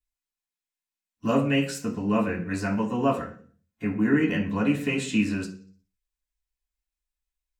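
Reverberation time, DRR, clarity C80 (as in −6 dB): 0.40 s, −3.5 dB, 15.5 dB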